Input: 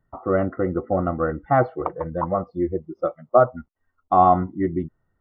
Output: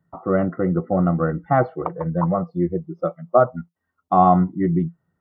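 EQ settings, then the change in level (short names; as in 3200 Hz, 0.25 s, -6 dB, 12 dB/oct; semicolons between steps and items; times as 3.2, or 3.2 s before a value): HPF 92 Hz; bell 170 Hz +13.5 dB 0.3 oct; 0.0 dB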